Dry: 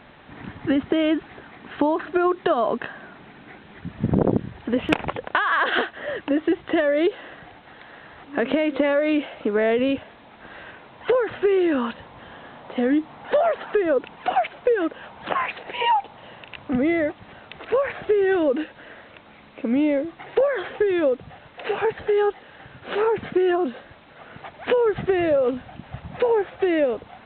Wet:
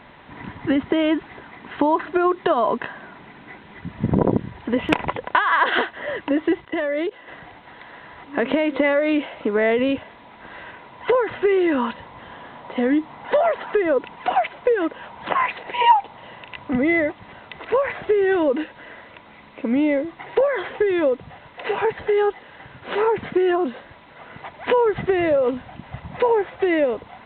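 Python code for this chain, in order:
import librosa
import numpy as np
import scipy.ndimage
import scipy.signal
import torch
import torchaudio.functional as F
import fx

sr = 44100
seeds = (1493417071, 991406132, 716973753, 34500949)

y = fx.level_steps(x, sr, step_db=24, at=(6.6, 7.28))
y = fx.small_body(y, sr, hz=(980.0, 2000.0), ring_ms=45, db=10)
y = y * librosa.db_to_amplitude(1.0)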